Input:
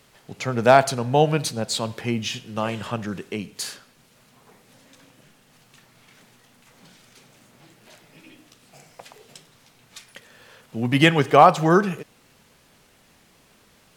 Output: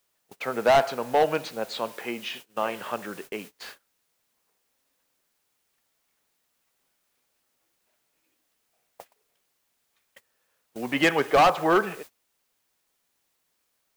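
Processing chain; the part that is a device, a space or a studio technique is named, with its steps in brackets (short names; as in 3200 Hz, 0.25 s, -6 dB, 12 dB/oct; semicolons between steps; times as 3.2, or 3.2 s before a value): aircraft radio (BPF 390–2600 Hz; hard clip -14 dBFS, distortion -7 dB; white noise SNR 20 dB; gate -41 dBFS, range -25 dB); 1.88–2.49 HPF 200 Hz 6 dB/oct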